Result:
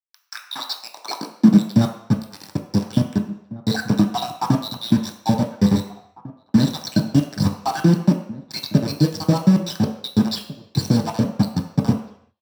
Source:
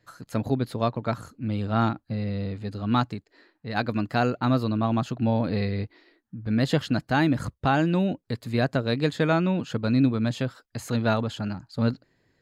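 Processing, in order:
time-frequency cells dropped at random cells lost 72%
flat-topped bell 4,800 Hz +14 dB 1.2 octaves
mains-hum notches 50/100/150 Hz
downward compressor 8 to 1, threshold −31 dBFS, peak gain reduction 14.5 dB
bit-depth reduction 6 bits, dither none
high-pass filter sweep 1,300 Hz → 89 Hz, 0:00.45–0:01.91
slap from a distant wall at 300 metres, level −18 dB
convolution reverb RT60 0.70 s, pre-delay 3 ms, DRR 0.5 dB

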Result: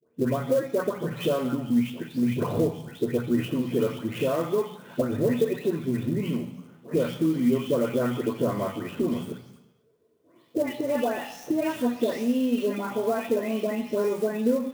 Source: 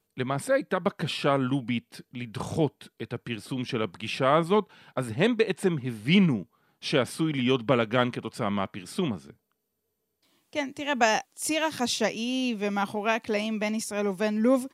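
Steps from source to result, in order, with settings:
every frequency bin delayed by itself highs late, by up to 334 ms
high-pass filter 150 Hz 12 dB per octave
downward compressor 12 to 1, threshold −36 dBFS, peak gain reduction 18.5 dB
convolution reverb RT60 1.0 s, pre-delay 3 ms, DRR 7 dB
converter with an unsteady clock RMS 0.022 ms
level +4.5 dB

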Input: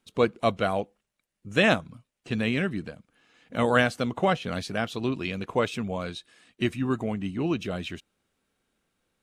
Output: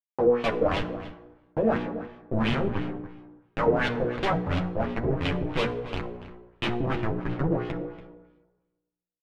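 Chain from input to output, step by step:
hold until the input has moved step −20 dBFS
high-pass filter 45 Hz 12 dB per octave
first-order pre-emphasis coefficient 0.8
mains-hum notches 60/120/180/240/300/360/420/480 Hz
brickwall limiter −22 dBFS, peak gain reduction 8.5 dB
power curve on the samples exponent 0.35
auto-filter low-pass sine 2.9 Hz 460–3,200 Hz
multi-voice chorus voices 6, 0.25 Hz, delay 10 ms, depth 4 ms
slap from a distant wall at 49 metres, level −14 dB
dense smooth reverb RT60 1.2 s, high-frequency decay 0.55×, DRR 12.5 dB
level +7.5 dB

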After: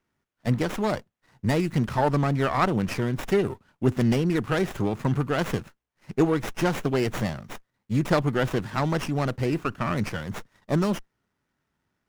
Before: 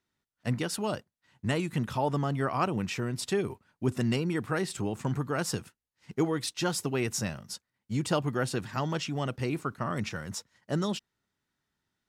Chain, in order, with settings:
running median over 3 samples
windowed peak hold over 9 samples
level +6.5 dB

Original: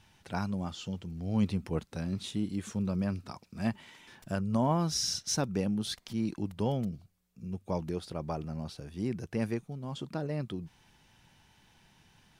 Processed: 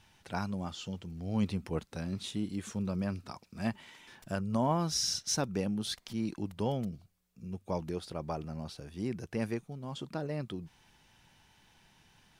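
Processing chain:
parametric band 130 Hz −3 dB 2.8 octaves

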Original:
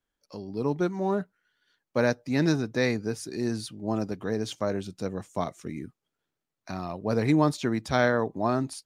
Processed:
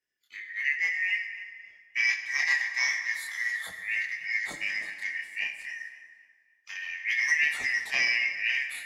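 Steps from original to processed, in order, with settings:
band-splitting scrambler in four parts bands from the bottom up 3142
multi-voice chorus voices 2, 0.27 Hz, delay 25 ms, depth 4.7 ms
formants moved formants +2 semitones
tape delay 271 ms, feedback 32%, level −15.5 dB, low-pass 5,400 Hz
dense smooth reverb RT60 1.8 s, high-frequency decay 0.65×, DRR 6 dB

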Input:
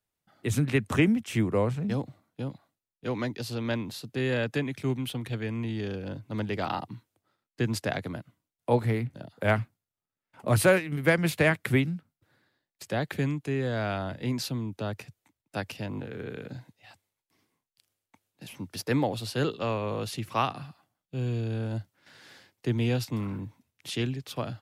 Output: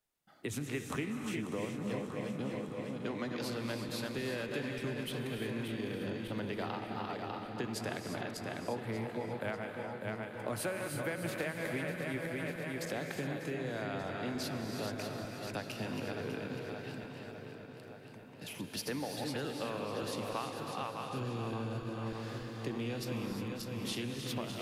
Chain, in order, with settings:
feedback delay that plays each chunk backwards 299 ms, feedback 60%, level −7 dB
parametric band 91 Hz −8.5 dB 1.4 octaves
downward compressor 6 to 1, threshold −36 dBFS, peak gain reduction 18.5 dB
on a send: feedback echo with a low-pass in the loop 1,178 ms, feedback 53%, low-pass 2,900 Hz, level −10 dB
on the sum: reverb whose tail is shaped and stops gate 380 ms rising, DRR 5 dB

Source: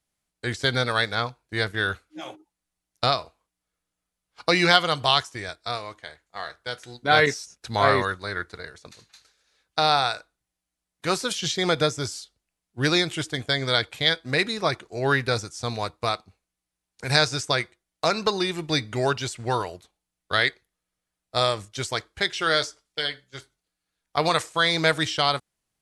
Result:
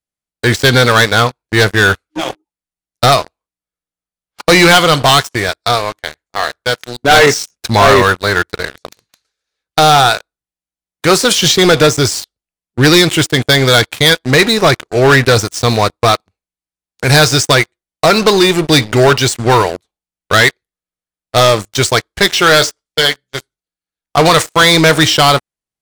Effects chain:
parametric band 430 Hz +2 dB 0.9 octaves
leveller curve on the samples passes 5

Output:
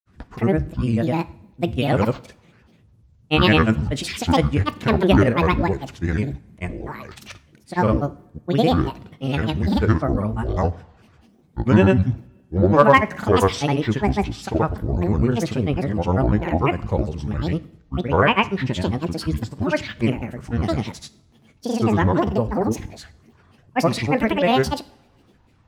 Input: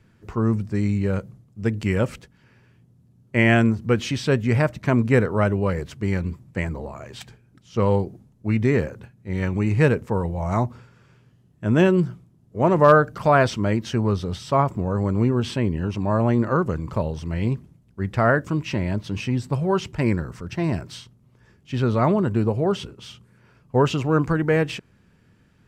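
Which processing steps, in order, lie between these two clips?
granular cloud, pitch spread up and down by 12 semitones
coupled-rooms reverb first 0.52 s, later 1.8 s, from −21 dB, DRR 14 dB
level +2.5 dB

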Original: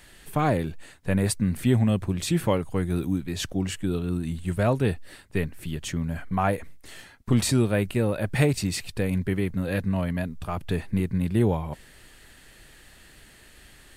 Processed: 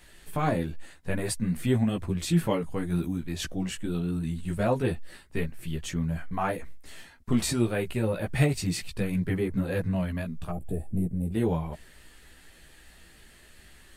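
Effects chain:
gain on a spectral selection 0:10.50–0:11.33, 820–7,100 Hz −21 dB
multi-voice chorus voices 6, 0.87 Hz, delay 15 ms, depth 3.3 ms

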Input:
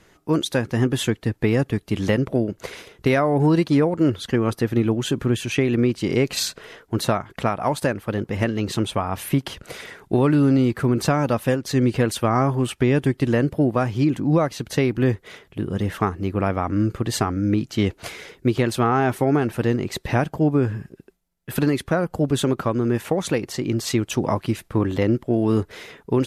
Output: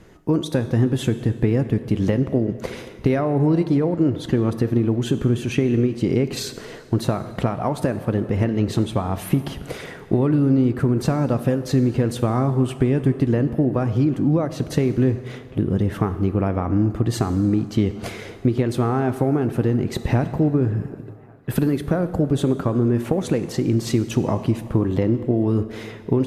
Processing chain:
downward compressor 3 to 1, threshold −26 dBFS, peak gain reduction 9.5 dB
tilt shelving filter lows +5.5 dB, about 760 Hz
delay with a band-pass on its return 378 ms, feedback 79%, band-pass 1,100 Hz, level −24 dB
dense smooth reverb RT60 1.8 s, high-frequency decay 0.85×, DRR 11 dB
level +4 dB

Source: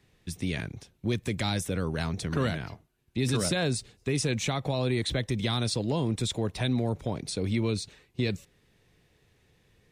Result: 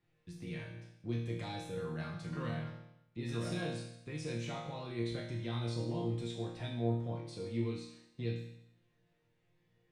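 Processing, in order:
low-pass filter 2,600 Hz 6 dB per octave
resonators tuned to a chord A#2 sus4, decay 0.8 s
level +9.5 dB

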